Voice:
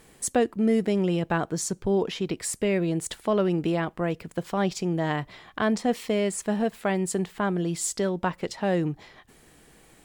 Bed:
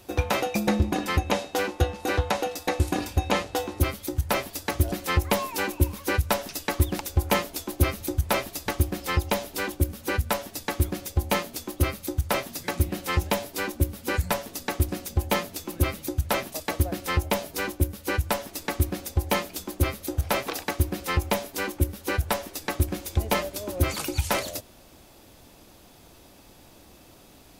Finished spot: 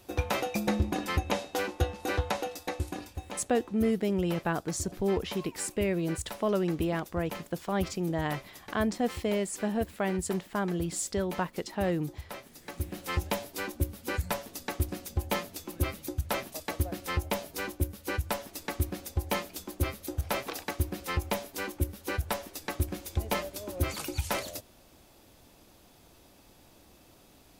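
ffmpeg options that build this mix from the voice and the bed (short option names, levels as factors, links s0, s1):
-filter_complex "[0:a]adelay=3150,volume=0.596[s0];[1:a]volume=2,afade=t=out:st=2.26:d=1:silence=0.251189,afade=t=in:st=12.57:d=0.57:silence=0.281838[s1];[s0][s1]amix=inputs=2:normalize=0"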